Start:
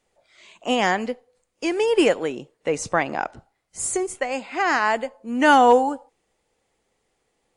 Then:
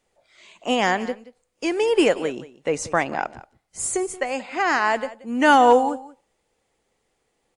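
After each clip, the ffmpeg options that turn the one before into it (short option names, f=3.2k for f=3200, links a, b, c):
-af "aecho=1:1:179:0.133"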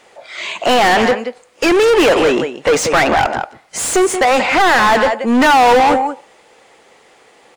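-filter_complex "[0:a]asplit=2[a][b];[b]highpass=f=720:p=1,volume=35dB,asoftclip=type=tanh:threshold=-3.5dB[c];[a][c]amix=inputs=2:normalize=0,lowpass=f=2.6k:p=1,volume=-6dB"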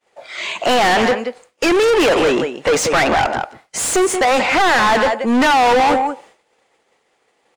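-af "agate=range=-33dB:threshold=-37dB:ratio=3:detection=peak,asoftclip=type=tanh:threshold=-9.5dB"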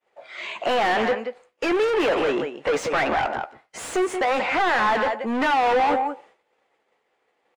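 -filter_complex "[0:a]bass=f=250:g=-5,treble=f=4k:g=-11,asplit=2[a][b];[b]adelay=14,volume=-11.5dB[c];[a][c]amix=inputs=2:normalize=0,volume=-7dB"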